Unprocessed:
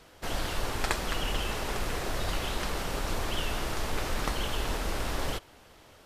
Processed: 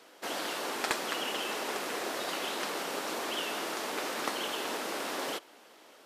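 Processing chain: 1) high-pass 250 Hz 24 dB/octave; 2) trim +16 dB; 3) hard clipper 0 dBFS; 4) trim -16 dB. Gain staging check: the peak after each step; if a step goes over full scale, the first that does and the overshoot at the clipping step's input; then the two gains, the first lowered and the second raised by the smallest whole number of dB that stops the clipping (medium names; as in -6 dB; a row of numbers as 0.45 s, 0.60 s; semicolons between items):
-10.0 dBFS, +6.0 dBFS, 0.0 dBFS, -16.0 dBFS; step 2, 6.0 dB; step 2 +10 dB, step 4 -10 dB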